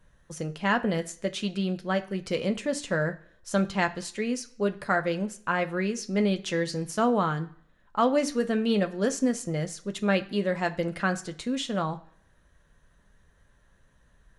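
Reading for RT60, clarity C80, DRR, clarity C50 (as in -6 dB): 0.55 s, 20.5 dB, 6.0 dB, 16.5 dB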